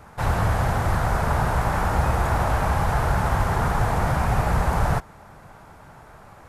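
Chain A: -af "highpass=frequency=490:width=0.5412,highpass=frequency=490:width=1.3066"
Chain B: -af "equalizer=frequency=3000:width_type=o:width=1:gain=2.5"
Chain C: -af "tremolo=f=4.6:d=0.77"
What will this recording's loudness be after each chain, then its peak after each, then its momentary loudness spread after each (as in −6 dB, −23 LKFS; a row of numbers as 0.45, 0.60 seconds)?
−26.5, −23.0, −26.5 LKFS; −13.5, −7.5, −10.0 dBFS; 2, 1, 2 LU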